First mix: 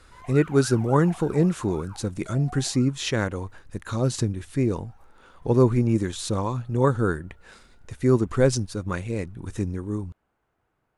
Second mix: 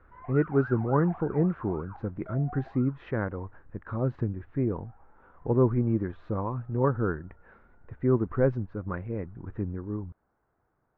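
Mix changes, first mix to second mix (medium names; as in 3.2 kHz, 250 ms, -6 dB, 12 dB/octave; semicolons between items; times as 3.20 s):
speech -4.5 dB; master: add low-pass 1.7 kHz 24 dB/octave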